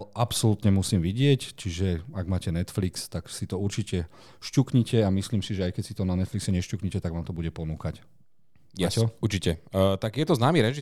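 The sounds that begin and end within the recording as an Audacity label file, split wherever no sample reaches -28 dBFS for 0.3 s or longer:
4.450000	7.910000	sound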